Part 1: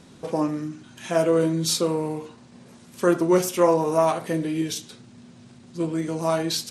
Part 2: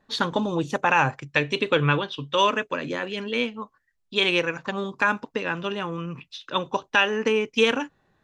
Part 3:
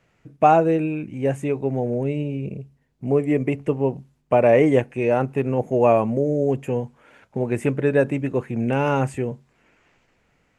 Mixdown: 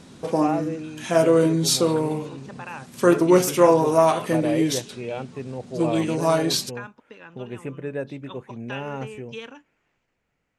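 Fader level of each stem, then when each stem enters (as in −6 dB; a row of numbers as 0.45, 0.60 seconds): +3.0, −17.0, −11.5 decibels; 0.00, 1.75, 0.00 seconds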